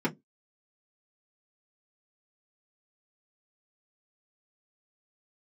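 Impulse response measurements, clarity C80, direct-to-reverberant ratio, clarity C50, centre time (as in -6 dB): 34.0 dB, -5.5 dB, 21.5 dB, 16 ms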